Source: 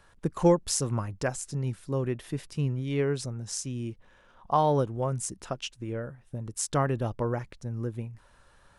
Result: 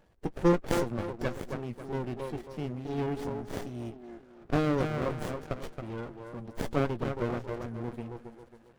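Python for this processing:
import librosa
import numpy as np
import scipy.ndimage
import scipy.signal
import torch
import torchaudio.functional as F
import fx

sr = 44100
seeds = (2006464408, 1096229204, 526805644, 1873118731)

y = fx.spec_quant(x, sr, step_db=30)
y = fx.low_shelf(y, sr, hz=290.0, db=-8.0)
y = fx.doubler(y, sr, ms=17.0, db=-12.0)
y = fx.echo_wet_bandpass(y, sr, ms=272, feedback_pct=38, hz=570.0, wet_db=-3.0)
y = fx.running_max(y, sr, window=33)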